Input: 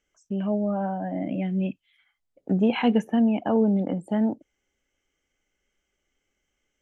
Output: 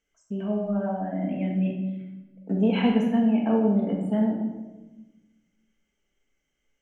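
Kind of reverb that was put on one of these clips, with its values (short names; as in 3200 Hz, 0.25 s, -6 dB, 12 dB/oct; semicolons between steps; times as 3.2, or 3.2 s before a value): shoebox room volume 660 m³, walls mixed, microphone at 1.6 m; gain -5 dB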